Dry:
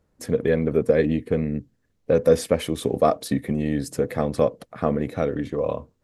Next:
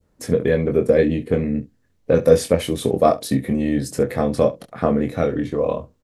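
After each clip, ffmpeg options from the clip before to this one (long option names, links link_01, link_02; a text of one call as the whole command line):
ffmpeg -i in.wav -filter_complex "[0:a]adynamicequalizer=threshold=0.0178:dfrequency=1300:dqfactor=0.71:tfrequency=1300:tqfactor=0.71:attack=5:release=100:ratio=0.375:range=2:mode=cutabove:tftype=bell,asplit=2[link_01][link_02];[link_02]aecho=0:1:23|68:0.531|0.133[link_03];[link_01][link_03]amix=inputs=2:normalize=0,volume=3dB" out.wav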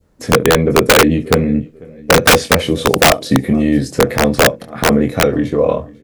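ffmpeg -i in.wav -filter_complex "[0:a]aecho=1:1:495|990:0.0668|0.0227,acrossover=split=6600[link_01][link_02];[link_02]acompressor=threshold=-47dB:ratio=4:attack=1:release=60[link_03];[link_01][link_03]amix=inputs=2:normalize=0,aeval=exprs='(mod(2.82*val(0)+1,2)-1)/2.82':channel_layout=same,volume=7dB" out.wav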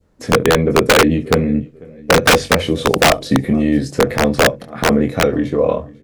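ffmpeg -i in.wav -af "highshelf=frequency=9800:gain=-7.5,bandreject=frequency=47.05:width_type=h:width=4,bandreject=frequency=94.1:width_type=h:width=4,bandreject=frequency=141.15:width_type=h:width=4,volume=-1.5dB" out.wav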